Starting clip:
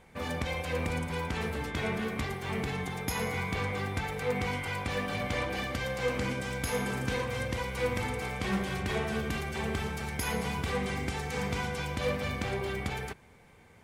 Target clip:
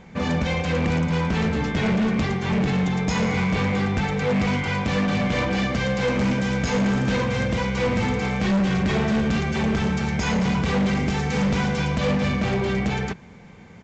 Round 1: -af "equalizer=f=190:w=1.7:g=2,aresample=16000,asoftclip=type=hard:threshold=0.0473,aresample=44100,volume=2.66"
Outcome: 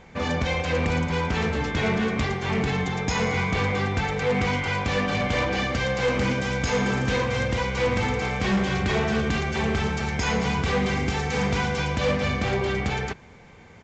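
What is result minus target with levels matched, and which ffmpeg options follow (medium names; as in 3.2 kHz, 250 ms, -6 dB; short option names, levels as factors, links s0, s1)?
250 Hz band -3.5 dB
-af "equalizer=f=190:w=1.7:g=11,aresample=16000,asoftclip=type=hard:threshold=0.0473,aresample=44100,volume=2.66"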